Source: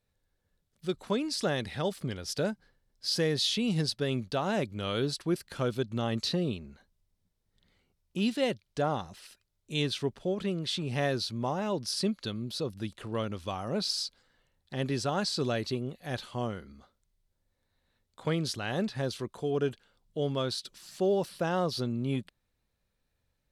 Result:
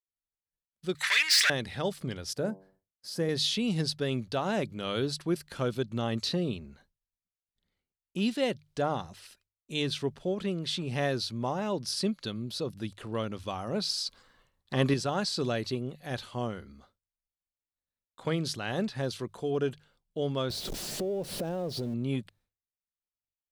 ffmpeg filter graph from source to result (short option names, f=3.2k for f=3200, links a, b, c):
-filter_complex "[0:a]asettb=1/sr,asplit=3[a][b][c];[a]atrim=end=0.954[d];[b]atrim=start=0.95:end=1.5,asetpts=PTS-STARTPTS,afade=t=in:d=0.004:c=qsin,afade=t=out:st=0.546:d=0.004:c=qsin,asplit=2[e][f];[f]highpass=f=720:p=1,volume=24dB,asoftclip=type=tanh:threshold=-18dB[g];[e][g]amix=inputs=2:normalize=0,lowpass=f=5.3k:p=1,volume=-6dB,highpass=f=1.9k:t=q:w=5.7,highshelf=f=3.5k:g=6[h];[c]atrim=start=1.496[i];[d][h]acrossfade=d=0.004:c1=hsin:c2=qsin[j];[j][i]acrossfade=d=0.004:c1=qsin:c2=hsin,asettb=1/sr,asplit=3[k][l][m];[k]atrim=end=2.334[n];[l]atrim=start=2.33:end=3.29,asetpts=PTS-STARTPTS,afade=t=in:d=0.004:c=qsin,afade=t=out:st=0.956:d=0.004:c=qsin,highpass=57,equalizer=f=3.6k:w=0.64:g=-13,bandreject=f=95.57:t=h:w=4,bandreject=f=191.14:t=h:w=4,bandreject=f=286.71:t=h:w=4,bandreject=f=382.28:t=h:w=4,bandreject=f=477.85:t=h:w=4,bandreject=f=573.42:t=h:w=4,bandreject=f=668.99:t=h:w=4,bandreject=f=764.56:t=h:w=4,bandreject=f=860.13:t=h:w=4,bandreject=f=955.7:t=h:w=4,bandreject=f=1.05127k:t=h:w=4[o];[m]atrim=start=3.286[p];[n][o]acrossfade=d=0.004:c1=hsin:c2=qsin[q];[q][p]acrossfade=d=0.004:c1=qsin:c2=hsin,asettb=1/sr,asplit=3[r][s][t];[r]atrim=end=14.064[u];[s]atrim=start=14.06:end=14.94,asetpts=PTS-STARTPTS,afade=t=in:d=0.004:c=qsin,afade=t=out:st=0.876:d=0.004:c=qsin,equalizer=f=1.1k:t=o:w=0.22:g=12,acontrast=57[v];[t]atrim=start=14.936[w];[u][v]acrossfade=d=0.004:c1=hsin:c2=qsin[x];[x][w]acrossfade=d=0.004:c1=qsin:c2=hsin,asettb=1/sr,asplit=3[y][z][aa];[y]atrim=end=20.504[ab];[z]atrim=start=20.5:end=21.94,asetpts=PTS-STARTPTS,afade=t=in:d=0.004:c=qsin,afade=t=out:st=1.436:d=0.004:c=qsin,aeval=exprs='val(0)+0.5*0.02*sgn(val(0))':c=same,lowshelf=f=790:t=q:w=1.5:g=8.5,acompressor=threshold=-33dB:ratio=4:attack=3.2:release=140:knee=1:detection=peak[ac];[aa]atrim=start=21.936[ad];[ab][ac]acrossfade=d=0.004:c1=hsin:c2=qsin[ae];[ae][ad]acrossfade=d=0.004:c1=qsin:c2=hsin,agate=range=-33dB:threshold=-59dB:ratio=3:detection=peak,bandreject=f=50:t=h:w=6,bandreject=f=100:t=h:w=6,bandreject=f=150:t=h:w=6"